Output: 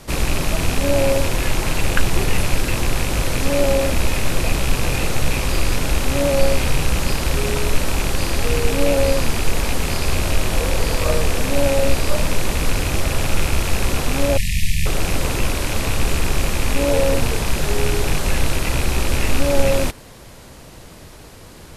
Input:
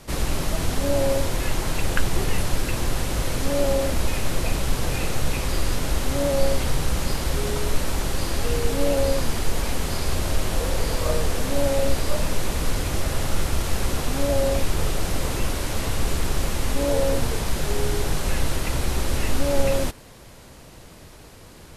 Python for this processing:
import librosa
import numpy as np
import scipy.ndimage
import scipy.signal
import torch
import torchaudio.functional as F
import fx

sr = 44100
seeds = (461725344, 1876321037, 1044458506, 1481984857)

y = fx.rattle_buzz(x, sr, strikes_db=-27.0, level_db=-20.0)
y = fx.brickwall_bandstop(y, sr, low_hz=220.0, high_hz=1700.0, at=(14.37, 14.86))
y = F.gain(torch.from_numpy(y), 4.5).numpy()